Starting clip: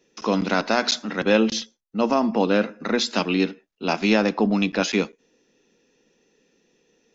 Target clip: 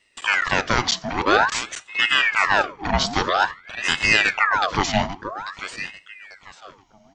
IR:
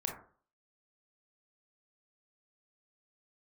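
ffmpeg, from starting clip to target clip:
-filter_complex "[0:a]aecho=1:1:843|1686|2529:0.266|0.0718|0.0194,asplit=2[link_01][link_02];[1:a]atrim=start_sample=2205[link_03];[link_02][link_03]afir=irnorm=-1:irlink=0,volume=-19.5dB[link_04];[link_01][link_04]amix=inputs=2:normalize=0,aeval=exprs='val(0)*sin(2*PI*1400*n/s+1400*0.7/0.5*sin(2*PI*0.5*n/s))':channel_layout=same,volume=3dB"

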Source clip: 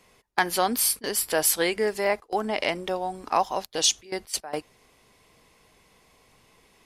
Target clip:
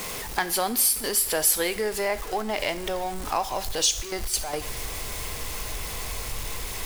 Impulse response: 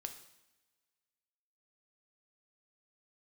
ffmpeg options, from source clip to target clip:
-filter_complex "[0:a]aeval=exprs='val(0)+0.5*0.0266*sgn(val(0))':channel_layout=same,asubboost=boost=8:cutoff=67,acompressor=threshold=-32dB:ratio=1.5,asplit=2[link_01][link_02];[1:a]atrim=start_sample=2205,highshelf=frequency=4900:gain=10.5[link_03];[link_02][link_03]afir=irnorm=-1:irlink=0,volume=0dB[link_04];[link_01][link_04]amix=inputs=2:normalize=0,volume=-3dB"

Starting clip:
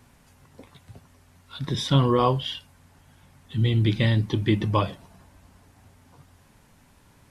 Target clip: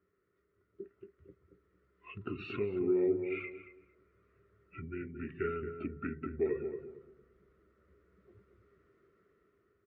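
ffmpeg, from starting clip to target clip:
ffmpeg -i in.wav -filter_complex "[0:a]afftdn=noise_reduction=13:noise_floor=-40,highshelf=frequency=2500:gain=-8,dynaudnorm=framelen=450:gausssize=5:maxgain=10.5dB,asplit=2[link_01][link_02];[link_02]alimiter=limit=-10dB:level=0:latency=1:release=34,volume=1.5dB[link_03];[link_01][link_03]amix=inputs=2:normalize=0,acompressor=threshold=-18dB:ratio=16,asplit=3[link_04][link_05][link_06];[link_04]bandpass=frequency=530:width_type=q:width=8,volume=0dB[link_07];[link_05]bandpass=frequency=1840:width_type=q:width=8,volume=-6dB[link_08];[link_06]bandpass=frequency=2480:width_type=q:width=8,volume=-9dB[link_09];[link_07][link_08][link_09]amix=inputs=3:normalize=0,asplit=2[link_10][link_11];[link_11]adelay=168,lowpass=frequency=1400:poles=1,volume=-6.5dB,asplit=2[link_12][link_13];[link_13]adelay=168,lowpass=frequency=1400:poles=1,volume=0.28,asplit=2[link_14][link_15];[link_15]adelay=168,lowpass=frequency=1400:poles=1,volume=0.28,asplit=2[link_16][link_17];[link_17]adelay=168,lowpass=frequency=1400:poles=1,volume=0.28[link_18];[link_10][link_12][link_14][link_16][link_18]amix=inputs=5:normalize=0,asetrate=32667,aresample=44100,adynamicequalizer=threshold=0.002:dfrequency=1900:dqfactor=0.7:tfrequency=1900:tqfactor=0.7:attack=5:release=100:ratio=0.375:range=1.5:mode=cutabove:tftype=highshelf,volume=1.5dB" out.wav

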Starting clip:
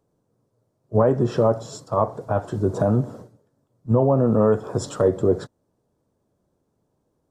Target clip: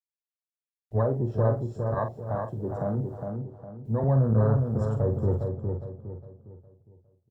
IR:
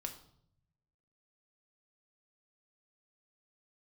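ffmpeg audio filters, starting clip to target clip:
-filter_complex "[0:a]afwtdn=0.0447,asubboost=boost=8.5:cutoff=110,asettb=1/sr,asplit=3[link_01][link_02][link_03];[link_01]atrim=end=1.944[link_04];[link_02]atrim=start=1.94:end=4.04,asetpts=PTS-STARTPTS,afade=type=in:duration=0.004:curve=qsin,afade=type=out:start_time=2.096:duration=0.004:curve=qsin,acrossover=split=150|3000[link_05][link_06][link_07];[link_05]acompressor=threshold=-33dB:ratio=6[link_08];[link_08][link_06][link_07]amix=inputs=3:normalize=0[link_09];[link_03]atrim=start=4.036[link_10];[link_04][link_09]acrossfade=duration=0.004:curve1=hsin:curve2=qsin[link_11];[link_11][link_10]acrossfade=duration=0.004:curve1=qsin:curve2=hsin,acrusher=bits=10:mix=0:aa=0.000001,asplit=2[link_12][link_13];[link_13]adelay=45,volume=-8dB[link_14];[link_12][link_14]amix=inputs=2:normalize=0,asplit=2[link_15][link_16];[link_16]adelay=409,lowpass=frequency=2400:poles=1,volume=-5dB,asplit=2[link_17][link_18];[link_18]adelay=409,lowpass=frequency=2400:poles=1,volume=0.38,asplit=2[link_19][link_20];[link_20]adelay=409,lowpass=frequency=2400:poles=1,volume=0.38,asplit=2[link_21][link_22];[link_22]adelay=409,lowpass=frequency=2400:poles=1,volume=0.38,asplit=2[link_23][link_24];[link_24]adelay=409,lowpass=frequency=2400:poles=1,volume=0.38[link_25];[link_15][link_17][link_19][link_21][link_23][link_25]amix=inputs=6:normalize=0,volume=-8.5dB"

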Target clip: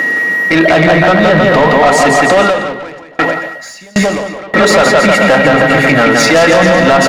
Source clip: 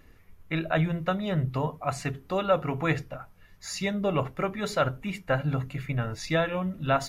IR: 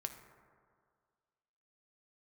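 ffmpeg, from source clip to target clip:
-filter_complex "[0:a]highpass=frequency=190:width=0.5412,highpass=frequency=190:width=1.3066,acompressor=threshold=-47dB:ratio=2,lowpass=9200,equalizer=frequency=1100:width_type=o:width=0.26:gain=-4,bandreject=frequency=390:width=12,aecho=1:1:170|314.5|437.3|541.7|630.5:0.631|0.398|0.251|0.158|0.1,aeval=exprs='val(0)+0.00398*sin(2*PI*1900*n/s)':channel_layout=same,equalizer=frequency=3400:width_type=o:width=2.8:gain=-10.5,asplit=2[link_01][link_02];[link_02]highpass=frequency=720:poles=1,volume=22dB,asoftclip=type=tanh:threshold=-27.5dB[link_03];[link_01][link_03]amix=inputs=2:normalize=0,lowpass=frequency=5800:poles=1,volume=-6dB,alimiter=level_in=31.5dB:limit=-1dB:release=50:level=0:latency=1,asettb=1/sr,asplit=3[link_04][link_05][link_06];[link_04]atrim=end=2.424[link_07];[link_05]atrim=start=2.42:end=4.54,asetpts=PTS-STARTPTS,afade=type=in:duration=0.004:curve=qsin,afade=type=out:start_time=2.116:duration=0.004:curve=qsin,aeval=exprs='val(0)*pow(10,-31*if(lt(mod(1.3*n/s,1),2*abs(1.3)/1000),1-mod(1.3*n/s,1)/(2*abs(1.3)/1000),(mod(1.3*n/s,1)-2*abs(1.3)/1000)/(1-2*abs(1.3)/1000))/20)':channel_layout=same[link_08];[link_06]atrim=start=4.536[link_09];[link_07][link_08]acrossfade=duration=0.004:curve1=hsin:curve2=qsin[link_10];[link_10][link_09]acrossfade=duration=0.004:curve1=qsin:curve2=hsin,volume=-1dB"

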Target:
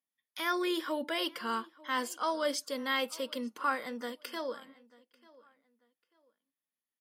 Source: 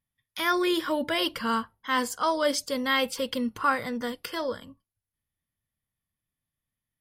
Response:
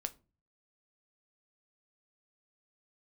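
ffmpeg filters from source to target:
-filter_complex "[0:a]highpass=frequency=240:width=0.5412,highpass=frequency=240:width=1.3066,asplit=2[link_01][link_02];[link_02]adelay=891,lowpass=frequency=4800:poles=1,volume=-22.5dB,asplit=2[link_03][link_04];[link_04]adelay=891,lowpass=frequency=4800:poles=1,volume=0.27[link_05];[link_03][link_05]amix=inputs=2:normalize=0[link_06];[link_01][link_06]amix=inputs=2:normalize=0,volume=-6.5dB"

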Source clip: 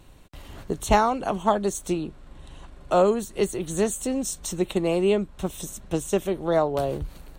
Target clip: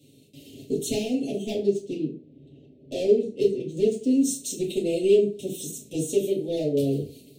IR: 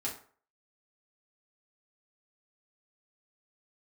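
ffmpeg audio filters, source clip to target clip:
-filter_complex "[0:a]highpass=frequency=130:width=0.5412,highpass=frequency=130:width=1.3066,asoftclip=type=hard:threshold=-17.5dB,asettb=1/sr,asplit=3[link_01][link_02][link_03];[link_01]atrim=end=1.534[link_04];[link_02]atrim=start=1.53:end=4.09,asetpts=PTS-STARTPTS,afade=type=in:duration=0.004:curve=qsin,afade=type=out:start_time=2.556:duration=0.004:curve=qsin,adynamicsmooth=sensitivity=4:basefreq=1300[link_05];[link_03]atrim=start=4.086[link_06];[link_04][link_05]acrossfade=duration=0.004:curve1=hsin:curve2=qsin[link_07];[link_07][link_06]acrossfade=duration=0.004:curve1=qsin:curve2=hsin,asuperstop=centerf=1200:order=8:qfactor=0.53[link_08];[1:a]atrim=start_sample=2205[link_09];[link_08][link_09]afir=irnorm=-1:irlink=0"

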